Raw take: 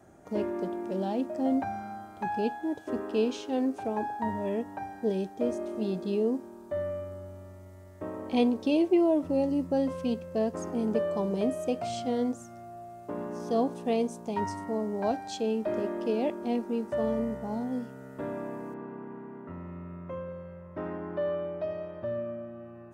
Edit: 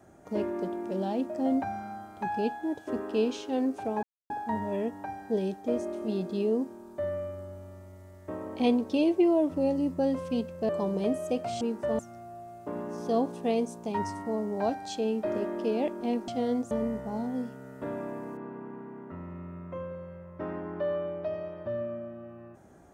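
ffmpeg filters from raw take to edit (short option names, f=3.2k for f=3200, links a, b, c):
-filter_complex "[0:a]asplit=7[a][b][c][d][e][f][g];[a]atrim=end=4.03,asetpts=PTS-STARTPTS,afade=t=out:st=4.026:d=0.004:c=hsin,apad=pad_dur=0.27[h];[b]atrim=start=4.03:end=10.422,asetpts=PTS-STARTPTS,afade=t=in:d=0.004:c=hsin[i];[c]atrim=start=11.058:end=11.982[j];[d]atrim=start=16.698:end=17.082[k];[e]atrim=start=12.408:end=16.702[l];[f]atrim=start=11.978:end=12.412[m];[g]atrim=start=17.078[n];[h][i]concat=n=2:v=0:a=1[o];[o][j]acrossfade=d=0.004:c1=hsin:c2=hsin[p];[p][k]acrossfade=d=0.004:c1=hsin:c2=hsin[q];[q][l]acrossfade=d=0.004:c1=hsin:c2=hsin[r];[r][m]acrossfade=d=0.004:c1=hsin:c2=hsin[s];[s][n]acrossfade=d=0.004:c1=hsin:c2=hsin"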